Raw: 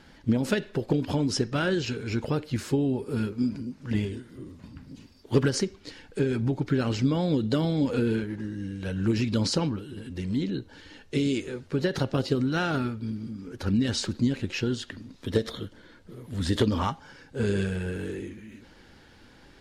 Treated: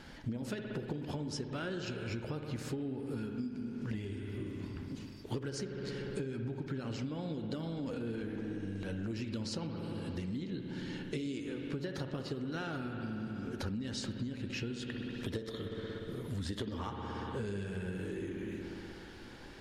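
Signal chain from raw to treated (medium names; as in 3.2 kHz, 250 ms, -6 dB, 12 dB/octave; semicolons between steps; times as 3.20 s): 7.66–9.11 s: transient shaper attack -11 dB, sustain +7 dB; spring tank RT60 2.6 s, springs 60 ms, chirp 65 ms, DRR 6 dB; compression 10:1, threshold -37 dBFS, peak gain reduction 21 dB; trim +1.5 dB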